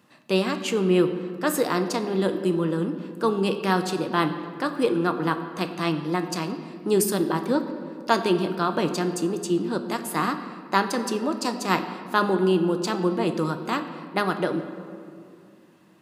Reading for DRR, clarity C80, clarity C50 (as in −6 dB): 7.0 dB, 10.5 dB, 9.5 dB